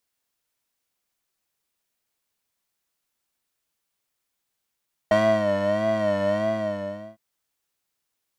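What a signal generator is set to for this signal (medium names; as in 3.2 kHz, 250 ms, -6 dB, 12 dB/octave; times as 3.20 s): synth patch with vibrato G#3, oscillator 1 square, oscillator 2 square, interval +19 st, oscillator 2 level -0.5 dB, sub 0 dB, filter bandpass, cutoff 470 Hz, Q 0.8, filter envelope 1 oct, filter sustain 50%, attack 3.5 ms, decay 0.33 s, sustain -6.5 dB, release 0.81 s, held 1.25 s, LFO 1.6 Hz, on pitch 82 cents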